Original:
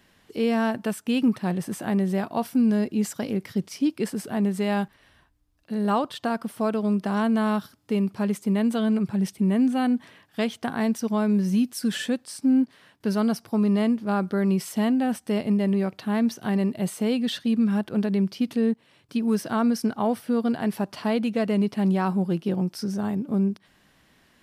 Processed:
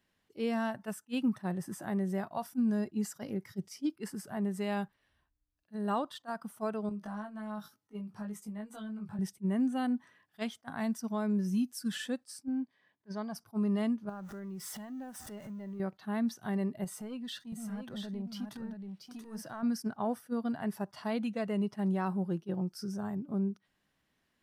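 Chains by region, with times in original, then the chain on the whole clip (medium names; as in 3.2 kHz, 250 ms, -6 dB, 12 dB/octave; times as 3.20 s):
6.89–9.19 s: high-pass 110 Hz + compression 12:1, threshold -29 dBFS + doubling 19 ms -3 dB
12.48–13.35 s: Bessel low-pass 4.2 kHz + dynamic bell 340 Hz, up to -5 dB, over -33 dBFS, Q 0.74 + comb of notches 1.4 kHz
14.09–15.80 s: jump at every zero crossing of -32.5 dBFS + compression 5:1, threshold -31 dBFS
16.84–19.63 s: waveshaping leveller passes 1 + compression 2.5:1, threshold -32 dBFS + delay 681 ms -4.5 dB
whole clip: spectral noise reduction 9 dB; attacks held to a fixed rise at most 550 dB/s; trim -8.5 dB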